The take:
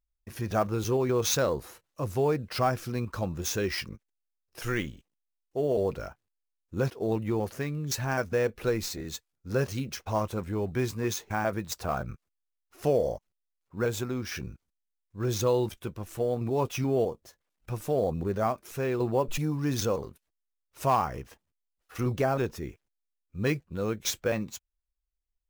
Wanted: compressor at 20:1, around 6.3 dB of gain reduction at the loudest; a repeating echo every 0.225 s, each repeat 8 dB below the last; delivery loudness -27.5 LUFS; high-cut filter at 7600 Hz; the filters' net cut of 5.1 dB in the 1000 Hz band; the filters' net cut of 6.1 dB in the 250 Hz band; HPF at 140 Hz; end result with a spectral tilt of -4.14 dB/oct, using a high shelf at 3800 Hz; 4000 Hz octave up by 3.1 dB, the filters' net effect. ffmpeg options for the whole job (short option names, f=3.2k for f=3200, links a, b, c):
-af "highpass=140,lowpass=7.6k,equalizer=f=250:t=o:g=-7.5,equalizer=f=1k:t=o:g=-6.5,highshelf=f=3.8k:g=-3,equalizer=f=4k:t=o:g=6.5,acompressor=threshold=-30dB:ratio=20,aecho=1:1:225|450|675|900|1125:0.398|0.159|0.0637|0.0255|0.0102,volume=9dB"